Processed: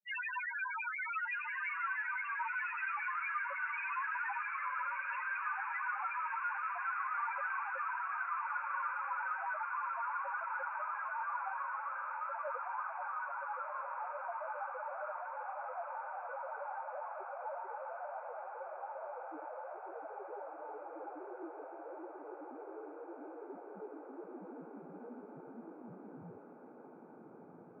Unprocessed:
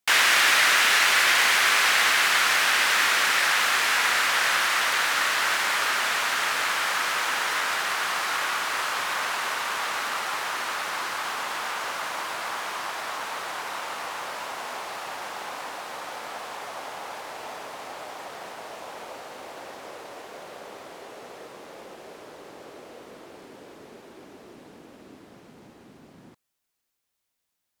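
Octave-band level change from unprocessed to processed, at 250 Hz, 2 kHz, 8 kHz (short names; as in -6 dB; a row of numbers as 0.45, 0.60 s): -7.5 dB, -15.5 dB, under -40 dB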